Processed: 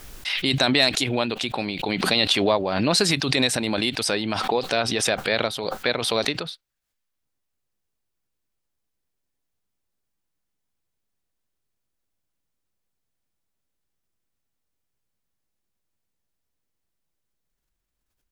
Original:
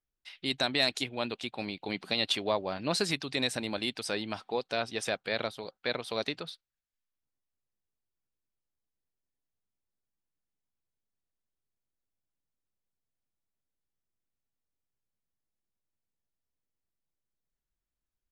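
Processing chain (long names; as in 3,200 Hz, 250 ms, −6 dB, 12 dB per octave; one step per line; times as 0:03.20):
background raised ahead of every attack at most 32 dB per second
level +8 dB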